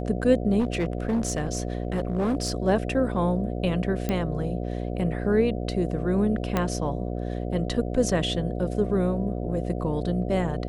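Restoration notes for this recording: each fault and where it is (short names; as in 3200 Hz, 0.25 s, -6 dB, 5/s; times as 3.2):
buzz 60 Hz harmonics 12 -30 dBFS
0.59–2.55 clipped -20.5 dBFS
4.09 pop -13 dBFS
6.57 pop -10 dBFS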